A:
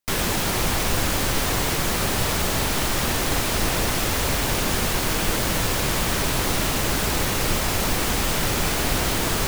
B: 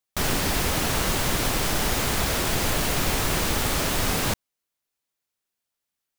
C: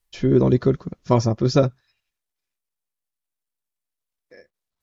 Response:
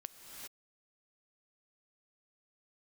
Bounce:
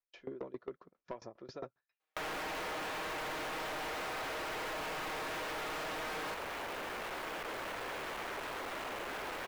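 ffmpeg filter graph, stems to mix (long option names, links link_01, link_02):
-filter_complex "[0:a]asoftclip=type=hard:threshold=-26dB,adelay=2150,volume=2dB[link_01];[1:a]aecho=1:1:6.4:0.65,adelay=2000,volume=3dB[link_02];[2:a]aeval=exprs='val(0)*pow(10,-26*if(lt(mod(7.4*n/s,1),2*abs(7.4)/1000),1-mod(7.4*n/s,1)/(2*abs(7.4)/1000),(mod(7.4*n/s,1)-2*abs(7.4)/1000)/(1-2*abs(7.4)/1000))/20)':channel_layout=same,volume=-7dB[link_03];[link_01][link_02][link_03]amix=inputs=3:normalize=0,acrossover=split=350 2800:gain=0.0891 1 0.126[link_04][link_05][link_06];[link_04][link_05][link_06]amix=inputs=3:normalize=0,asoftclip=type=tanh:threshold=-28dB,acompressor=threshold=-39dB:ratio=6"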